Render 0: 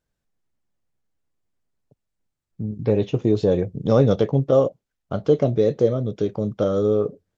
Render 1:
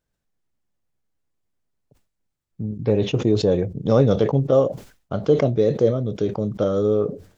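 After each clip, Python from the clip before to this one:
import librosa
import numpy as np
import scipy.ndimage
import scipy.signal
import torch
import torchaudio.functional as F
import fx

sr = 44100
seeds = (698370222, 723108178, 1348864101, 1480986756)

y = fx.sustainer(x, sr, db_per_s=130.0)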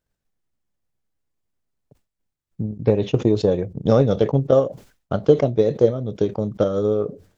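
y = fx.transient(x, sr, attack_db=6, sustain_db=-4)
y = F.gain(torch.from_numpy(y), -1.5).numpy()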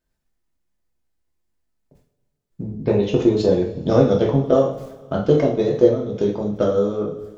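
y = fx.rev_double_slope(x, sr, seeds[0], early_s=0.44, late_s=2.1, knee_db=-19, drr_db=-2.5)
y = F.gain(torch.from_numpy(y), -2.0).numpy()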